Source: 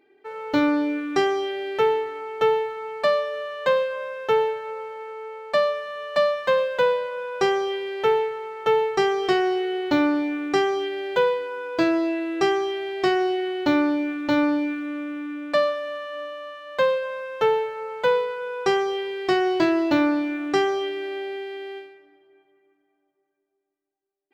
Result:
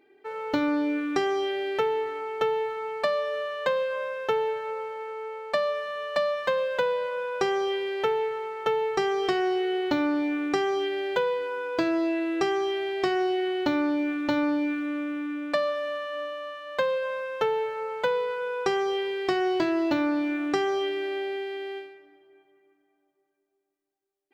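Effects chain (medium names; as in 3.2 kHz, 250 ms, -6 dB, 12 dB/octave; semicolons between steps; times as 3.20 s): compression, threshold -22 dBFS, peak gain reduction 7 dB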